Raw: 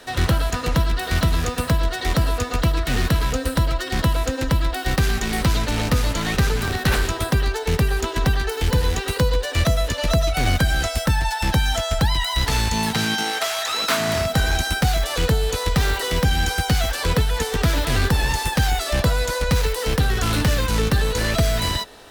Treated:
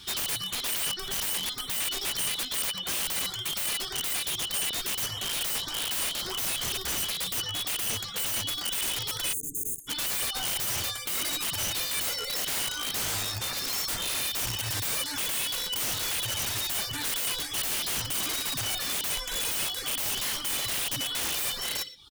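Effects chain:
band-splitting scrambler in four parts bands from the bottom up 2413
guitar amp tone stack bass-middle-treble 5-5-5
in parallel at −1.5 dB: brickwall limiter −26 dBFS, peak gain reduction 11.5 dB
on the sum: reverb reduction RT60 0.85 s
multi-tap delay 59/116 ms −16.5/−15.5 dB
auto-filter notch saw up 1.7 Hz 500–7,500 Hz
high-shelf EQ 2,400 Hz −10.5 dB
wrap-around overflow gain 32.5 dB
time-frequency box erased 0:09.33–0:09.88, 480–6,200 Hz
level +7.5 dB

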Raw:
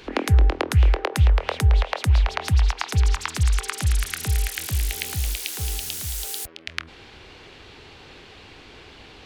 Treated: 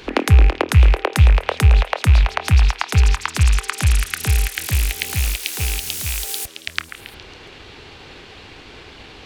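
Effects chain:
loose part that buzzes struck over −29 dBFS, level −21 dBFS
transient designer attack +1 dB, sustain −5 dB
echo through a band-pass that steps 138 ms, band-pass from 1,600 Hz, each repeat 0.7 octaves, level −9.5 dB
level +5 dB

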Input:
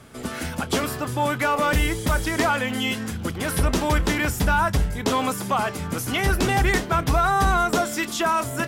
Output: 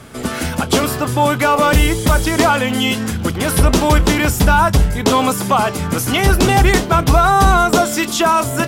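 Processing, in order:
dynamic equaliser 1,800 Hz, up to −5 dB, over −37 dBFS, Q 2.2
level +9 dB

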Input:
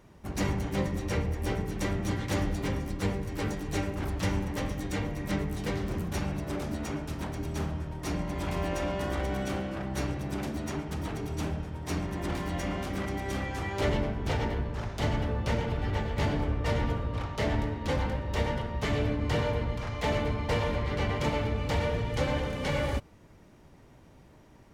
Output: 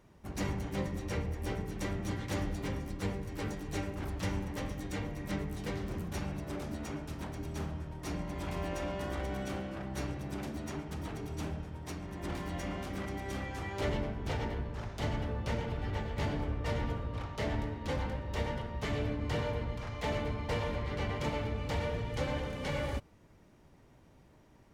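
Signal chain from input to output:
0:11.76–0:12.23: downward compressor, threshold −32 dBFS, peak gain reduction 6 dB
level −5.5 dB

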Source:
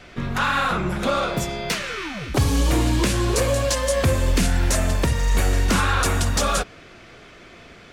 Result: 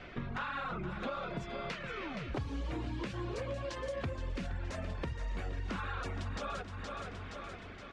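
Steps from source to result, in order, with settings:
reverb reduction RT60 0.68 s
repeating echo 470 ms, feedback 46%, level −12 dB
downward compressor 4 to 1, threshold −34 dBFS, peak gain reduction 15.5 dB
low-pass filter 3,200 Hz 12 dB per octave
level −3.5 dB

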